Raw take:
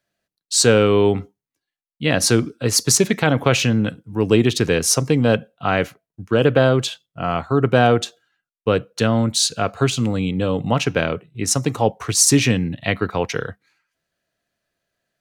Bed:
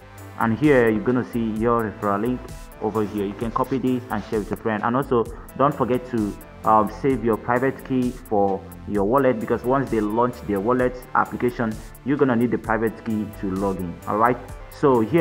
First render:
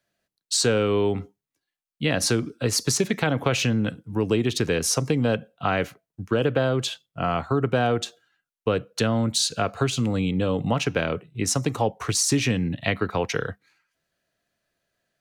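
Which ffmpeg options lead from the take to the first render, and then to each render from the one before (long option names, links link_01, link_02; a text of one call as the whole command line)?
ffmpeg -i in.wav -filter_complex "[0:a]acrossover=split=340|5100[link_01][link_02][link_03];[link_03]alimiter=limit=-14dB:level=0:latency=1[link_04];[link_01][link_02][link_04]amix=inputs=3:normalize=0,acompressor=threshold=-21dB:ratio=2.5" out.wav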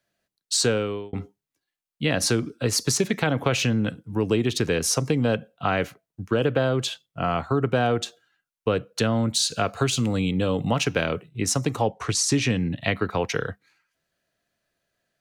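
ffmpeg -i in.wav -filter_complex "[0:a]asettb=1/sr,asplit=3[link_01][link_02][link_03];[link_01]atrim=end=9.494[link_04];[link_02]atrim=start=9.49:end=11.29,asetpts=PTS-STARTPTS,afade=type=in:duration=0.004:curve=qsin,afade=type=out:start_time=1.796:duration=0.004:curve=qsin,highshelf=frequency=3500:gain=5.5[link_05];[link_03]atrim=start=11.286[link_06];[link_04][link_05]acrossfade=duration=0.004:curve1=hsin:curve2=qsin[link_07];[link_07][link_06]acrossfade=duration=0.004:curve1=qsin:curve2=hsin,asettb=1/sr,asplit=3[link_08][link_09][link_10];[link_08]atrim=end=11.884[link_11];[link_09]atrim=start=11.88:end=12.73,asetpts=PTS-STARTPTS,afade=type=in:duration=0.004:curve=qsin,afade=type=out:start_time=0.846:duration=0.004:curve=qsin,lowpass=9300[link_12];[link_10]atrim=start=12.726[link_13];[link_11][link_12]acrossfade=duration=0.004:curve1=hsin:curve2=qsin[link_14];[link_14][link_13]acrossfade=duration=0.004:curve1=qsin:curve2=hsin,asplit=2[link_15][link_16];[link_15]atrim=end=1.13,asetpts=PTS-STARTPTS,afade=type=out:start_time=0.65:duration=0.48[link_17];[link_16]atrim=start=1.13,asetpts=PTS-STARTPTS,afade=type=in:duration=0.004:curve=hsin[link_18];[link_17][link_18]concat=n=2:v=0:a=1" out.wav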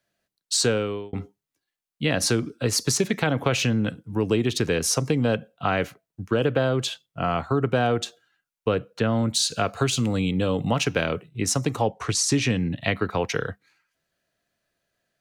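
ffmpeg -i in.wav -filter_complex "[0:a]asettb=1/sr,asplit=3[link_01][link_02][link_03];[link_01]atrim=end=8.744[link_04];[link_02]atrim=start=8.74:end=9.22,asetpts=PTS-STARTPTS,afade=type=in:duration=0.004:curve=qsin,afade=type=out:start_time=0.476:duration=0.004:curve=qsin,acrossover=split=2900[link_05][link_06];[link_06]acompressor=threshold=-45dB:ratio=4:attack=1:release=60[link_07];[link_05][link_07]amix=inputs=2:normalize=0[link_08];[link_03]atrim=start=9.216[link_09];[link_04][link_08]acrossfade=duration=0.004:curve1=hsin:curve2=qsin[link_10];[link_10][link_09]acrossfade=duration=0.004:curve1=qsin:curve2=hsin" out.wav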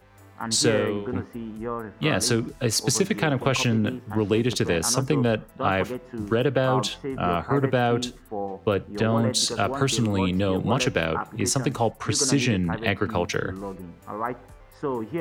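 ffmpeg -i in.wav -i bed.wav -filter_complex "[1:a]volume=-11dB[link_01];[0:a][link_01]amix=inputs=2:normalize=0" out.wav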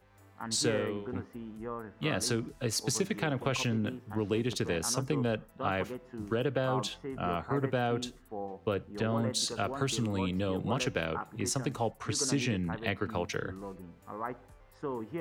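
ffmpeg -i in.wav -af "volume=-8.5dB" out.wav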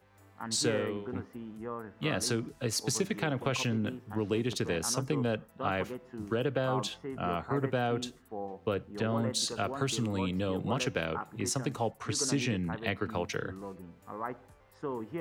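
ffmpeg -i in.wav -af "highpass=66" out.wav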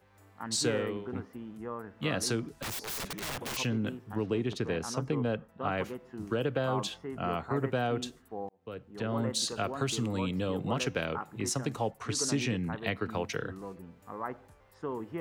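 ffmpeg -i in.wav -filter_complex "[0:a]asettb=1/sr,asplit=3[link_01][link_02][link_03];[link_01]atrim=end=2.624[link_04];[link_02]atrim=start=2.62:end=3.57,asetpts=PTS-STARTPTS,afade=type=in:duration=0.004:curve=qsin,afade=type=out:start_time=0.946:duration=0.004:curve=qsin,aeval=exprs='(mod(37.6*val(0)+1,2)-1)/37.6':channel_layout=same[link_05];[link_03]atrim=start=3.566[link_06];[link_04][link_05]acrossfade=duration=0.004:curve1=hsin:curve2=qsin[link_07];[link_07][link_06]acrossfade=duration=0.004:curve1=qsin:curve2=hsin,asettb=1/sr,asplit=3[link_08][link_09][link_10];[link_08]atrim=end=4.264[link_11];[link_09]atrim=start=4.26:end=5.78,asetpts=PTS-STARTPTS,afade=type=in:duration=0.004:curve=qsin,afade=type=out:start_time=1.516:duration=0.004:curve=qsin,lowpass=frequency=2600:poles=1[link_12];[link_10]atrim=start=5.776[link_13];[link_11][link_12]acrossfade=duration=0.004:curve1=hsin:curve2=qsin[link_14];[link_14][link_13]acrossfade=duration=0.004:curve1=qsin:curve2=hsin,asplit=2[link_15][link_16];[link_15]atrim=end=8.49,asetpts=PTS-STARTPTS,afade=type=out:start_time=8.486:duration=0.004:curve=hsin[link_17];[link_16]atrim=start=8.49,asetpts=PTS-STARTPTS,afade=type=in:duration=0.75[link_18];[link_17][link_18]concat=n=2:v=0:a=1" out.wav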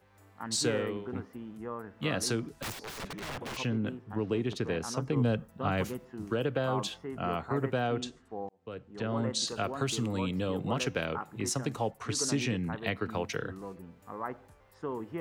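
ffmpeg -i in.wav -filter_complex "[0:a]asettb=1/sr,asplit=3[link_01][link_02][link_03];[link_01]atrim=end=2.724[link_04];[link_02]atrim=start=2.72:end=4.27,asetpts=PTS-STARTPTS,afade=type=in:duration=0.004:curve=qsin,afade=type=out:start_time=1.546:duration=0.004:curve=qsin,lowpass=frequency=2900:poles=1[link_05];[link_03]atrim=start=4.266[link_06];[link_04][link_05]acrossfade=duration=0.004:curve1=hsin:curve2=qsin[link_07];[link_07][link_06]acrossfade=duration=0.004:curve1=qsin:curve2=hsin,asettb=1/sr,asplit=3[link_08][link_09][link_10];[link_08]atrim=end=5.164[link_11];[link_09]atrim=start=5.16:end=6.05,asetpts=PTS-STARTPTS,afade=type=in:duration=0.004:curve=qsin,afade=type=out:start_time=0.886:duration=0.004:curve=qsin,bass=frequency=250:gain=7,treble=frequency=4000:gain=10[link_12];[link_10]atrim=start=6.046[link_13];[link_11][link_12]acrossfade=duration=0.004:curve1=hsin:curve2=qsin[link_14];[link_14][link_13]acrossfade=duration=0.004:curve1=qsin:curve2=hsin,asplit=3[link_15][link_16][link_17];[link_15]afade=type=out:start_time=7.79:duration=0.02[link_18];[link_16]lowpass=frequency=8100:width=0.5412,lowpass=frequency=8100:width=1.3066,afade=type=in:start_time=7.79:duration=0.02,afade=type=out:start_time=9.46:duration=0.02[link_19];[link_17]afade=type=in:start_time=9.46:duration=0.02[link_20];[link_18][link_19][link_20]amix=inputs=3:normalize=0" out.wav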